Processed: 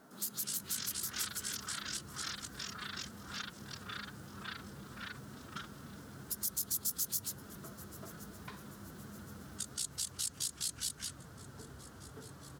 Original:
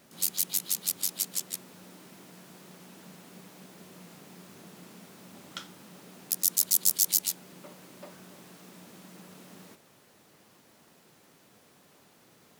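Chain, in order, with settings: on a send: feedback echo 1.068 s, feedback 46%, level -23 dB; on the sum: echoes that change speed 0.139 s, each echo -7 st, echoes 3; resonant high shelf 1800 Hz -6.5 dB, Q 3; formant-preserving pitch shift +2 st; in parallel at +1 dB: compressor, threshold -38 dBFS, peak gain reduction 11.5 dB; on the sum: dynamic EQ 760 Hz, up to -8 dB, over -53 dBFS, Q 0.82; gain -6.5 dB

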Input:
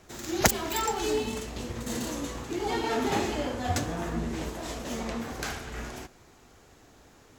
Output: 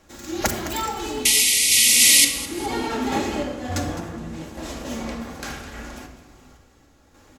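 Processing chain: painted sound noise, 1.25–2.25, 1900–12000 Hz -11 dBFS; compressor 2:1, threshold -19 dBFS, peak gain reduction 6.5 dB; feedback echo 0.209 s, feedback 32%, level -14 dB; random-step tremolo; shoebox room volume 3500 m³, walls furnished, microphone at 2.3 m; gain +2.5 dB

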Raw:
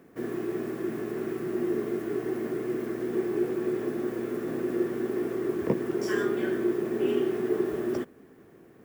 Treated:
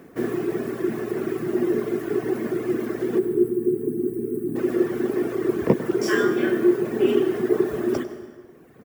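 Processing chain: reverb removal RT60 1.4 s; 3.19–4.56 spectral gain 470–7800 Hz -23 dB; 6.01–6.76 doubler 28 ms -5.5 dB; on a send: echo 99 ms -15.5 dB; on the sum: plate-style reverb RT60 1.6 s, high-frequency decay 0.75×, pre-delay 0.115 s, DRR 12 dB; gain +8.5 dB

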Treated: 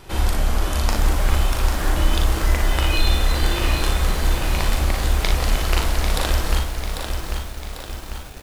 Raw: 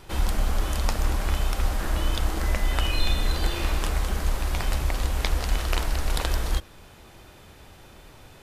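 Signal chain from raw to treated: on a send: early reflections 40 ms -5.5 dB, 58 ms -7 dB; on the sum: lo-fi delay 0.795 s, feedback 55%, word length 7-bit, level -6 dB; gain +3.5 dB

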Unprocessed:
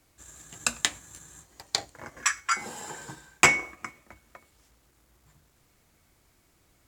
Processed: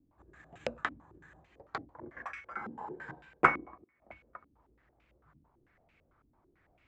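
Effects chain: 3.5–4.02 auto swell 0.746 s; stepped low-pass 9 Hz 270–2500 Hz; gain -6 dB

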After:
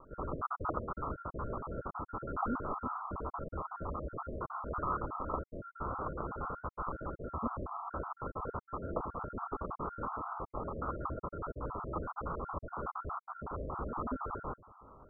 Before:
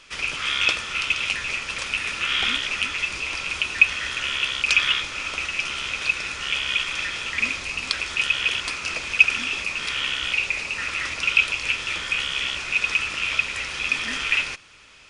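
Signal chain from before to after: random spectral dropouts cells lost 49%; steep low-pass 1300 Hz 96 dB/oct; gain +4 dB

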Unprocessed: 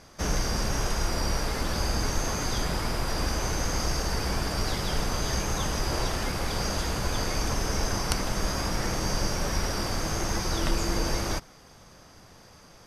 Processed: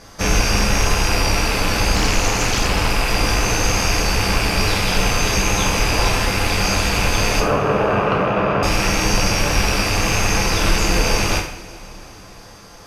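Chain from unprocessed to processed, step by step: rattling part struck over -40 dBFS, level -20 dBFS; 7.4–8.63 speaker cabinet 120–2500 Hz, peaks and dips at 140 Hz +9 dB, 420 Hz +7 dB, 600 Hz +10 dB, 1200 Hz +7 dB, 2100 Hz -8 dB; two-slope reverb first 0.53 s, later 4 s, from -22 dB, DRR -1 dB; 1.95–2.9 Doppler distortion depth 0.39 ms; gain +7 dB

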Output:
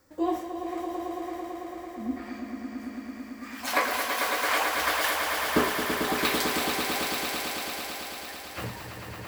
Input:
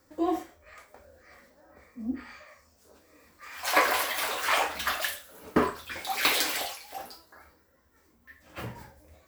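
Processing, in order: vocal rider within 4 dB 0.5 s; swelling echo 0.111 s, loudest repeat 5, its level -7 dB; gain -1.5 dB

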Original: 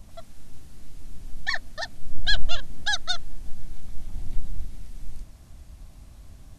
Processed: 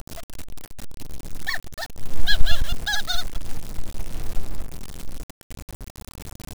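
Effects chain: 2.09–4.33 reverse delay 0.106 s, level -3.5 dB; upward compressor, threshold -33 dBFS; requantised 6-bit, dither none

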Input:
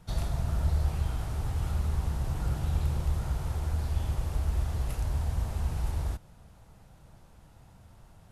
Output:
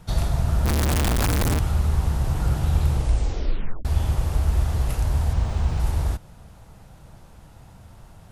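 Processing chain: 0.65–1.59 infinite clipping; 2.91 tape stop 0.94 s; 5.33–5.8 decimation joined by straight lines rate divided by 3×; gain +8 dB

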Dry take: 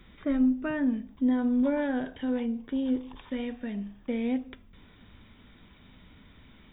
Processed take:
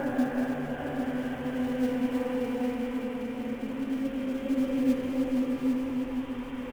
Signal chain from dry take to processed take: delta modulation 16 kbps, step -41 dBFS; bell 140 Hz +8.5 dB 0.31 oct; de-hum 45.77 Hz, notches 5; Paulstretch 5.1×, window 0.50 s, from 1.93; flange 1.7 Hz, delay 5.4 ms, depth 9.1 ms, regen +46%; in parallel at -4.5 dB: short-mantissa float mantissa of 2-bit; on the sum: echo 0.803 s -6 dB; on a send at -5 dB: reverb RT60 0.55 s, pre-delay 3 ms; on the sum: warbling echo 0.22 s, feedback 70%, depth 55 cents, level -11 dB

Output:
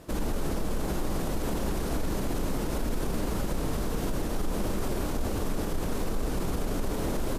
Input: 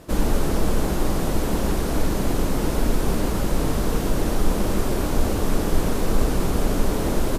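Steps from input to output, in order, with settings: limiter -16.5 dBFS, peak gain reduction 9.5 dB; gain -4 dB

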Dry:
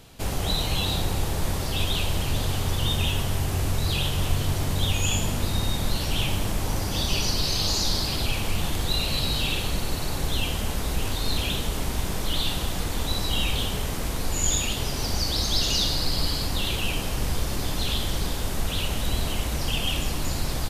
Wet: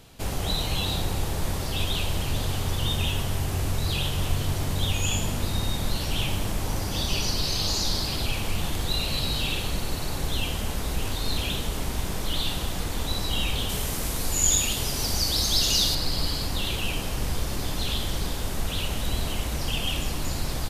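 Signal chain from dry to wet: 13.69–15.95 bell 12000 Hz +7.5 dB 2 oct; gain -1.5 dB

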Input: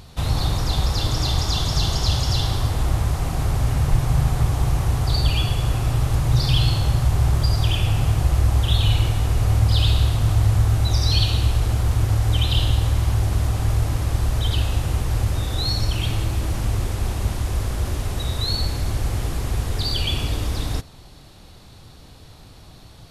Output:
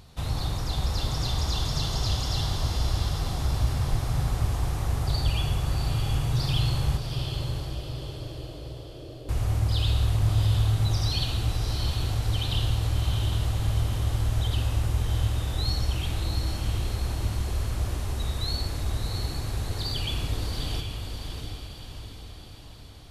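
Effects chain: 6.97–9.29 elliptic band-pass 290–620 Hz; diffused feedback echo 0.705 s, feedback 52%, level -5 dB; gain -7.5 dB

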